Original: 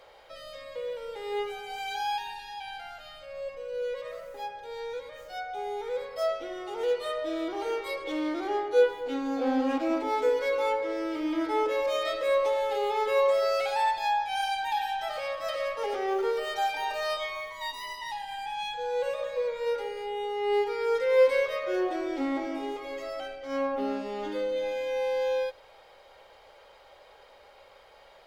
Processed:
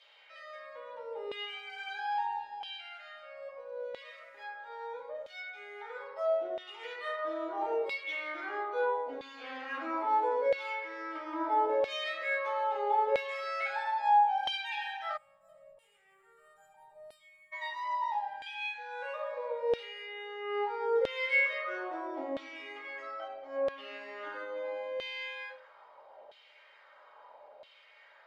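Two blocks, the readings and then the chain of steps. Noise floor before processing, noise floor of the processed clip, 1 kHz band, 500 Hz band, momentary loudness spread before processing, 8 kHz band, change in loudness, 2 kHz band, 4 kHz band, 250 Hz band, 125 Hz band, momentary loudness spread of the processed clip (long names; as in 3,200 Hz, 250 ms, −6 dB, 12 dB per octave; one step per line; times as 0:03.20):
−55 dBFS, −62 dBFS, −1.5 dB, −8.0 dB, 12 LU, below −15 dB, −4.5 dB, 0.0 dB, −4.5 dB, −14.0 dB, can't be measured, 16 LU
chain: rectangular room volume 300 cubic metres, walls furnished, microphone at 2.7 metres
gain on a spectral selection 0:15.17–0:17.53, 230–6,900 Hz −27 dB
auto-filter band-pass saw down 0.76 Hz 600–3,300 Hz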